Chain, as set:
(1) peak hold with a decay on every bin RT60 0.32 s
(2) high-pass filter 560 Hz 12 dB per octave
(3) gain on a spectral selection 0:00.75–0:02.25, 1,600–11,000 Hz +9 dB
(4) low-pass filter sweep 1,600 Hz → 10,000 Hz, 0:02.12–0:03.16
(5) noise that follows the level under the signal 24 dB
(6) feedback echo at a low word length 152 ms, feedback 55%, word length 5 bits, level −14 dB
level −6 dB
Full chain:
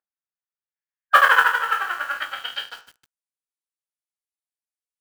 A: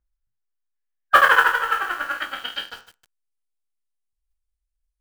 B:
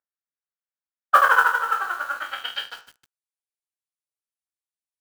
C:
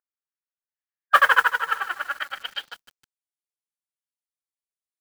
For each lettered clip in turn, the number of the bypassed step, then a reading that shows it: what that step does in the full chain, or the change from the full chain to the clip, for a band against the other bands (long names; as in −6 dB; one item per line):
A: 2, 500 Hz band +3.0 dB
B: 3, 4 kHz band −3.0 dB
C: 1, change in integrated loudness −2.0 LU